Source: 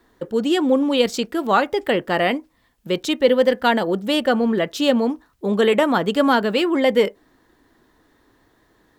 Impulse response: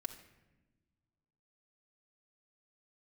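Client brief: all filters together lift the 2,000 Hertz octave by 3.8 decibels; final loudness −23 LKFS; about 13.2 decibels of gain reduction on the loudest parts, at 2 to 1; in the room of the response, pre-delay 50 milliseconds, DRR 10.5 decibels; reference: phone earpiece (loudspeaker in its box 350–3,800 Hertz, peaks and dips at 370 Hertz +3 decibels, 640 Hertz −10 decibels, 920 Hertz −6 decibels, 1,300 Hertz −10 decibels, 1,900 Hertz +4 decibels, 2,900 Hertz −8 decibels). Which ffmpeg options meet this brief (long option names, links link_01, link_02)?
-filter_complex "[0:a]equalizer=frequency=2000:width_type=o:gain=5.5,acompressor=threshold=-36dB:ratio=2,asplit=2[link_01][link_02];[1:a]atrim=start_sample=2205,adelay=50[link_03];[link_02][link_03]afir=irnorm=-1:irlink=0,volume=-8.5dB[link_04];[link_01][link_04]amix=inputs=2:normalize=0,highpass=350,equalizer=frequency=370:width_type=q:width=4:gain=3,equalizer=frequency=640:width_type=q:width=4:gain=-10,equalizer=frequency=920:width_type=q:width=4:gain=-6,equalizer=frequency=1300:width_type=q:width=4:gain=-10,equalizer=frequency=1900:width_type=q:width=4:gain=4,equalizer=frequency=2900:width_type=q:width=4:gain=-8,lowpass=frequency=3800:width=0.5412,lowpass=frequency=3800:width=1.3066,volume=10.5dB"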